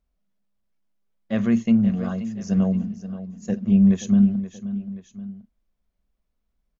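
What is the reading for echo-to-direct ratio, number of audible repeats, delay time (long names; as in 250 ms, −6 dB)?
−12.0 dB, 2, 528 ms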